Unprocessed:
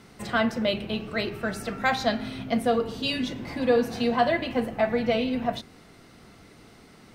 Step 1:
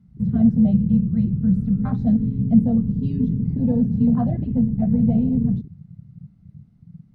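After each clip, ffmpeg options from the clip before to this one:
ffmpeg -i in.wav -af "lowshelf=frequency=260:width_type=q:width=3:gain=13.5,afwtdn=0.1,tiltshelf=frequency=770:gain=8,volume=-7dB" out.wav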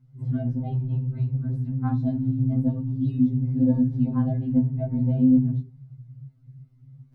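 ffmpeg -i in.wav -filter_complex "[0:a]acrossover=split=120|220|460[link_01][link_02][link_03][link_04];[link_01]asoftclip=type=tanh:threshold=-31dB[link_05];[link_05][link_02][link_03][link_04]amix=inputs=4:normalize=0,afftfilt=real='re*2.45*eq(mod(b,6),0)':imag='im*2.45*eq(mod(b,6),0)':win_size=2048:overlap=0.75" out.wav

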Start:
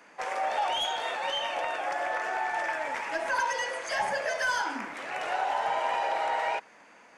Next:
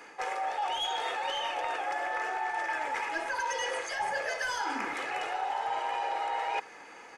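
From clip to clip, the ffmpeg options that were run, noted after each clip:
ffmpeg -i in.wav -af "aecho=1:1:2.4:0.51,areverse,acompressor=threshold=-35dB:ratio=6,areverse,volume=5dB" out.wav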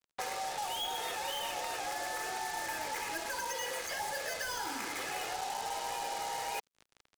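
ffmpeg -i in.wav -filter_complex "[0:a]acrusher=bits=5:mix=0:aa=0.5,acrossover=split=590|3500[link_01][link_02][link_03];[link_01]acompressor=threshold=-47dB:ratio=4[link_04];[link_02]acompressor=threshold=-43dB:ratio=4[link_05];[link_03]acompressor=threshold=-42dB:ratio=4[link_06];[link_04][link_05][link_06]amix=inputs=3:normalize=0,volume=2.5dB" out.wav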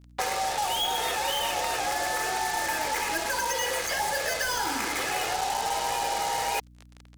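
ffmpeg -i in.wav -af "aeval=exprs='val(0)+0.001*(sin(2*PI*60*n/s)+sin(2*PI*2*60*n/s)/2+sin(2*PI*3*60*n/s)/3+sin(2*PI*4*60*n/s)/4+sin(2*PI*5*60*n/s)/5)':channel_layout=same,volume=9dB" out.wav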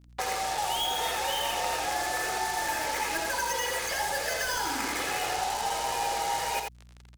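ffmpeg -i in.wav -af "aecho=1:1:85:0.596,volume=-3dB" out.wav

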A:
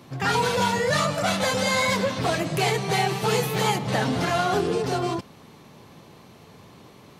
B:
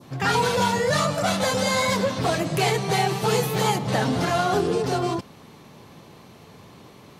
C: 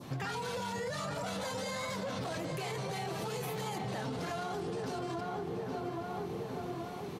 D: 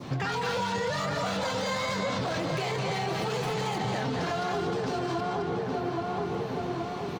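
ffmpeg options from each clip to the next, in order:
ffmpeg -i in.wav -af "adynamicequalizer=threshold=0.0141:dfrequency=2300:dqfactor=1.1:tfrequency=2300:tqfactor=1.1:attack=5:release=100:ratio=0.375:range=2:mode=cutabove:tftype=bell,volume=1.5dB" out.wav
ffmpeg -i in.wav -filter_complex "[0:a]asplit=2[link_01][link_02];[link_02]adelay=824,lowpass=frequency=1900:poles=1,volume=-8dB,asplit=2[link_03][link_04];[link_04]adelay=824,lowpass=frequency=1900:poles=1,volume=0.48,asplit=2[link_05][link_06];[link_06]adelay=824,lowpass=frequency=1900:poles=1,volume=0.48,asplit=2[link_07][link_08];[link_08]adelay=824,lowpass=frequency=1900:poles=1,volume=0.48,asplit=2[link_09][link_10];[link_10]adelay=824,lowpass=frequency=1900:poles=1,volume=0.48,asplit=2[link_11][link_12];[link_12]adelay=824,lowpass=frequency=1900:poles=1,volume=0.48[link_13];[link_01][link_03][link_05][link_07][link_09][link_11][link_13]amix=inputs=7:normalize=0,alimiter=limit=-20dB:level=0:latency=1:release=34,acompressor=threshold=-34dB:ratio=12" out.wav
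ffmpeg -i in.wav -filter_complex "[0:a]acrossover=split=630|7400[link_01][link_02][link_03];[link_02]aecho=1:1:215:0.668[link_04];[link_03]acrusher=samples=10:mix=1:aa=0.000001:lfo=1:lforange=10:lforate=1.5[link_05];[link_01][link_04][link_05]amix=inputs=3:normalize=0,volume=7dB" out.wav

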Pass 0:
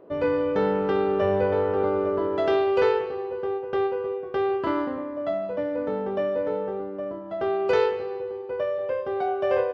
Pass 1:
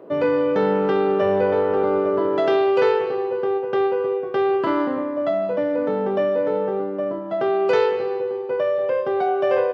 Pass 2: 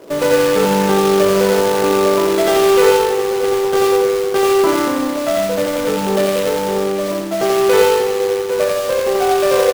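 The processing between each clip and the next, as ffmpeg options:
ffmpeg -i in.wav -filter_complex "[0:a]highpass=frequency=120:width=0.5412,highpass=frequency=120:width=1.3066,asplit=2[link_01][link_02];[link_02]alimiter=limit=-22.5dB:level=0:latency=1,volume=2dB[link_03];[link_01][link_03]amix=inputs=2:normalize=0" out.wav
ffmpeg -i in.wav -filter_complex "[0:a]acrusher=bits=2:mode=log:mix=0:aa=0.000001,asplit=2[link_01][link_02];[link_02]aecho=0:1:87.46|148.7:0.794|0.316[link_03];[link_01][link_03]amix=inputs=2:normalize=0,volume=3dB" out.wav

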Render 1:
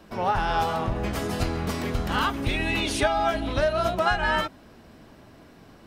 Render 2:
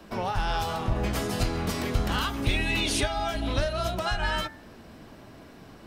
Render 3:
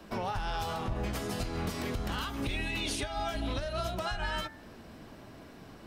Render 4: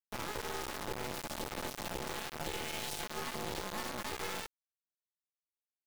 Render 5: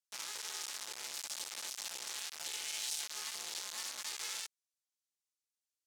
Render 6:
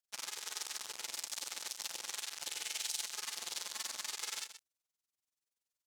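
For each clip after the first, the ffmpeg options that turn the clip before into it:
ffmpeg -i in.wav -filter_complex "[0:a]acrossover=split=130|3000[link_01][link_02][link_03];[link_02]acompressor=threshold=-30dB:ratio=6[link_04];[link_01][link_04][link_03]amix=inputs=3:normalize=0,bandreject=frequency=80.5:width_type=h:width=4,bandreject=frequency=161:width_type=h:width=4,bandreject=frequency=241.5:width_type=h:width=4,bandreject=frequency=322:width_type=h:width=4,bandreject=frequency=402.5:width_type=h:width=4,bandreject=frequency=483:width_type=h:width=4,bandreject=frequency=563.5:width_type=h:width=4,bandreject=frequency=644:width_type=h:width=4,bandreject=frequency=724.5:width_type=h:width=4,bandreject=frequency=805:width_type=h:width=4,bandreject=frequency=885.5:width_type=h:width=4,bandreject=frequency=966:width_type=h:width=4,bandreject=frequency=1046.5:width_type=h:width=4,bandreject=frequency=1127:width_type=h:width=4,bandreject=frequency=1207.5:width_type=h:width=4,bandreject=frequency=1288:width_type=h:width=4,bandreject=frequency=1368.5:width_type=h:width=4,bandreject=frequency=1449:width_type=h:width=4,bandreject=frequency=1529.5:width_type=h:width=4,bandreject=frequency=1610:width_type=h:width=4,bandreject=frequency=1690.5:width_type=h:width=4,bandreject=frequency=1771:width_type=h:width=4,bandreject=frequency=1851.5:width_type=h:width=4,bandreject=frequency=1932:width_type=h:width=4,bandreject=frequency=2012.5:width_type=h:width=4,bandreject=frequency=2093:width_type=h:width=4,bandreject=frequency=2173.5:width_type=h:width=4,volume=2.5dB" out.wav
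ffmpeg -i in.wav -af "alimiter=limit=-22dB:level=0:latency=1:release=226,volume=-2dB" out.wav
ffmpeg -i in.wav -af "aeval=exprs='val(0)*sin(2*PI*430*n/s)':channel_layout=same,acrusher=bits=3:dc=4:mix=0:aa=0.000001,volume=-1dB" out.wav
ffmpeg -i in.wav -af "bandpass=frequency=6600:width_type=q:width=1.1:csg=0,volume=7dB" out.wav
ffmpeg -i in.wav -filter_complex "[0:a]tremolo=f=21:d=0.947,asplit=2[link_01][link_02];[link_02]aecho=0:1:127:0.282[link_03];[link_01][link_03]amix=inputs=2:normalize=0,volume=4dB" out.wav

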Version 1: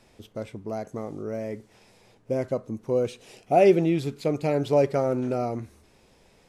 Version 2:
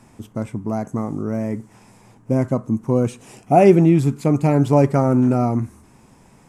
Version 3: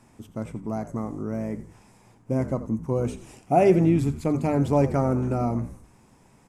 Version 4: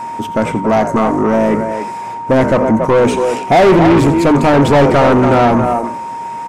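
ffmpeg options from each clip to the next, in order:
ffmpeg -i in.wav -af "equalizer=frequency=125:width_type=o:width=1:gain=8,equalizer=frequency=250:width_type=o:width=1:gain=8,equalizer=frequency=500:width_type=o:width=1:gain=-6,equalizer=frequency=1000:width_type=o:width=1:gain=8,equalizer=frequency=4000:width_type=o:width=1:gain=-9,equalizer=frequency=8000:width_type=o:width=1:gain=7,volume=4.5dB" out.wav
ffmpeg -i in.wav -filter_complex "[0:a]bandreject=frequency=50:width_type=h:width=6,bandreject=frequency=100:width_type=h:width=6,bandreject=frequency=150:width_type=h:width=6,bandreject=frequency=200:width_type=h:width=6,bandreject=frequency=250:width_type=h:width=6,asplit=5[link_01][link_02][link_03][link_04][link_05];[link_02]adelay=86,afreqshift=-56,volume=-14dB[link_06];[link_03]adelay=172,afreqshift=-112,volume=-21.5dB[link_07];[link_04]adelay=258,afreqshift=-168,volume=-29.1dB[link_08];[link_05]adelay=344,afreqshift=-224,volume=-36.6dB[link_09];[link_01][link_06][link_07][link_08][link_09]amix=inputs=5:normalize=0,volume=-6dB" out.wav
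ffmpeg -i in.wav -filter_complex "[0:a]asplit=2[link_01][link_02];[link_02]adelay=280,highpass=300,lowpass=3400,asoftclip=type=hard:threshold=-17dB,volume=-10dB[link_03];[link_01][link_03]amix=inputs=2:normalize=0,asplit=2[link_04][link_05];[link_05]highpass=frequency=720:poles=1,volume=30dB,asoftclip=type=tanh:threshold=-7dB[link_06];[link_04][link_06]amix=inputs=2:normalize=0,lowpass=frequency=2200:poles=1,volume=-6dB,aeval=exprs='val(0)+0.0447*sin(2*PI*930*n/s)':channel_layout=same,volume=5.5dB" out.wav

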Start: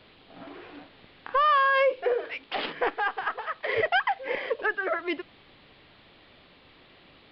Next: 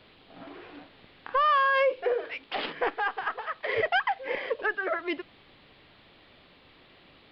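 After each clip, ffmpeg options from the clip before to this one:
ffmpeg -i in.wav -af "acontrast=33,volume=-6.5dB" out.wav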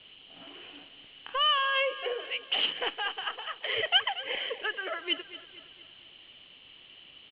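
ffmpeg -i in.wav -af "lowpass=frequency=3000:width_type=q:width=14,aecho=1:1:232|464|696|928|1160:0.178|0.0871|0.0427|0.0209|0.0103,volume=-7.5dB" out.wav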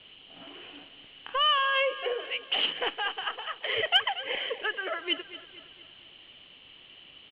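ffmpeg -i in.wav -af "aeval=exprs='0.266*(cos(1*acos(clip(val(0)/0.266,-1,1)))-cos(1*PI/2))+0.0211*(cos(3*acos(clip(val(0)/0.266,-1,1)))-cos(3*PI/2))+0.00668*(cos(5*acos(clip(val(0)/0.266,-1,1)))-cos(5*PI/2))':channel_layout=same,highshelf=frequency=4000:gain=-5,volume=3.5dB" out.wav

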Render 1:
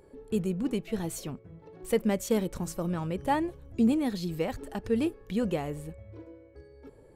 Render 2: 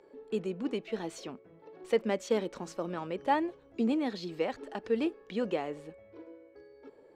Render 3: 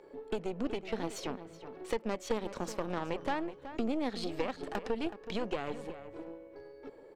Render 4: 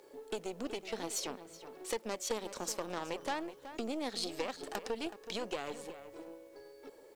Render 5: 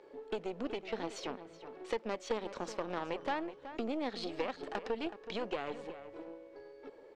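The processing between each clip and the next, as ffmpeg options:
ffmpeg -i in.wav -filter_complex "[0:a]acrossover=split=240 6000:gain=0.0708 1 0.0631[link_01][link_02][link_03];[link_01][link_02][link_03]amix=inputs=3:normalize=0" out.wav
ffmpeg -i in.wav -filter_complex "[0:a]acompressor=threshold=-36dB:ratio=5,aeval=exprs='0.0631*(cos(1*acos(clip(val(0)/0.0631,-1,1)))-cos(1*PI/2))+0.01*(cos(6*acos(clip(val(0)/0.0631,-1,1)))-cos(6*PI/2))':channel_layout=same,asplit=2[link_01][link_02];[link_02]adelay=373.2,volume=-12dB,highshelf=frequency=4000:gain=-8.4[link_03];[link_01][link_03]amix=inputs=2:normalize=0,volume=3.5dB" out.wav
ffmpeg -i in.wav -af "bass=frequency=250:gain=-8,treble=frequency=4000:gain=13,acrusher=bits=10:mix=0:aa=0.000001,volume=-2.5dB" out.wav
ffmpeg -i in.wav -af "lowpass=3000,volume=1.5dB" out.wav

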